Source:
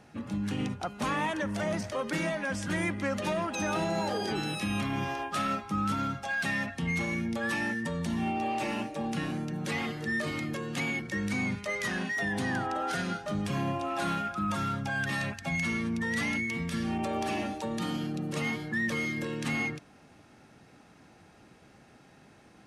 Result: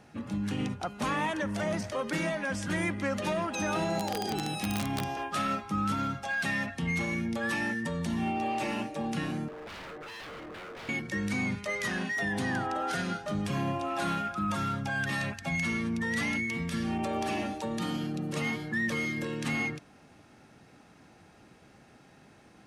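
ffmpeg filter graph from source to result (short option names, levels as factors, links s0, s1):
-filter_complex "[0:a]asettb=1/sr,asplit=3[s0][s1][s2];[s0]atrim=end=3.984[s3];[s1]atrim=start=3.98:end=5.17,asetpts=PTS-STARTPTS,afade=t=in:d=0.004:c=qsin,afade=t=out:st=1.186:d=0.004:c=qsin,equalizer=f=760:t=o:w=0.25:g=13.5,acrossover=split=430|3000[s4][s5][s6];[s5]acompressor=threshold=0.00891:ratio=2:attack=3.2:release=140:knee=2.83:detection=peak[s7];[s4][s7][s6]amix=inputs=3:normalize=0,aeval=exprs='(mod(14.1*val(0)+1,2)-1)/14.1':c=same[s8];[s2]atrim=start=5.166[s9];[s3][s8]acrossfade=d=0.004:c1=hsin:c2=qsin[s10];[s10][s9]acrossfade=d=0.004:c1=qsin:c2=hsin,asettb=1/sr,asplit=3[s11][s12][s13];[s11]atrim=end=9.484[s14];[s12]atrim=start=9.48:end=10.89,asetpts=PTS-STARTPTS,afade=t=in:d=0.004:c=qsin,afade=t=out:st=1.406:d=0.004:c=qsin,lowpass=1100,lowshelf=f=300:t=q:w=3:g=-12,aeval=exprs='0.0119*(abs(mod(val(0)/0.0119+3,4)-2)-1)':c=same[s15];[s13]atrim=start=10.886[s16];[s14][s15]acrossfade=d=0.004:c1=hsin:c2=qsin[s17];[s17][s16]acrossfade=d=0.004:c1=qsin:c2=hsin"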